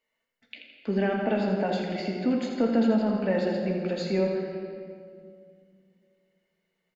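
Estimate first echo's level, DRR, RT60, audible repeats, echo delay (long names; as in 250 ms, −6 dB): −7.5 dB, −1.0 dB, 2.1 s, 2, 83 ms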